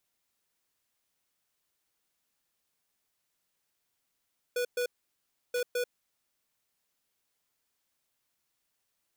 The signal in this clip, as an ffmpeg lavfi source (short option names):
-f lavfi -i "aevalsrc='0.0316*(2*lt(mod(490*t,1),0.5)-1)*clip(min(mod(mod(t,0.98),0.21),0.09-mod(mod(t,0.98),0.21))/0.005,0,1)*lt(mod(t,0.98),0.42)':d=1.96:s=44100"